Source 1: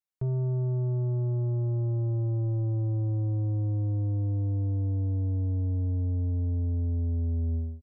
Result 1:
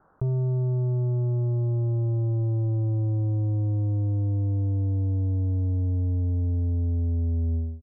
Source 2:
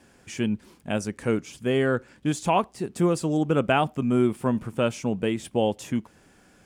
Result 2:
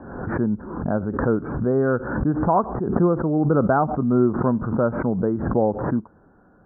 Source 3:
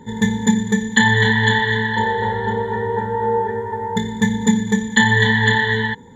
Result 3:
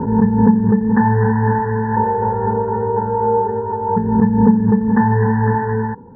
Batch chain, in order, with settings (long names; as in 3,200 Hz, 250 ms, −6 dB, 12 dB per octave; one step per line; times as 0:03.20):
Butterworth low-pass 1,500 Hz 72 dB per octave
background raised ahead of every attack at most 52 dB per second
level +3 dB